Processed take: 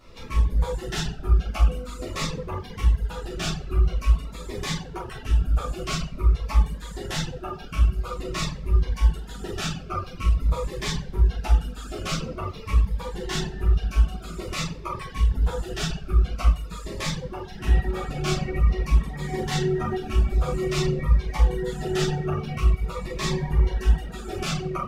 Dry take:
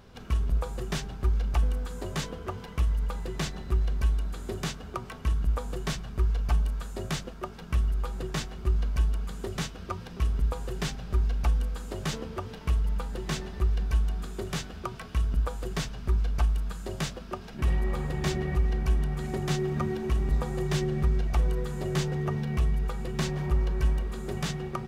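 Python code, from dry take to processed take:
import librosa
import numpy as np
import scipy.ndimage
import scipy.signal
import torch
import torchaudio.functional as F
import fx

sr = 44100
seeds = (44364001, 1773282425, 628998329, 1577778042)

y = fx.low_shelf(x, sr, hz=410.0, db=-8.0)
y = fx.room_shoebox(y, sr, seeds[0], volume_m3=170.0, walls='mixed', distance_m=3.2)
y = fx.dereverb_blind(y, sr, rt60_s=1.0)
y = fx.high_shelf(y, sr, hz=8300.0, db=-7.0)
y = fx.notch_cascade(y, sr, direction='falling', hz=0.48)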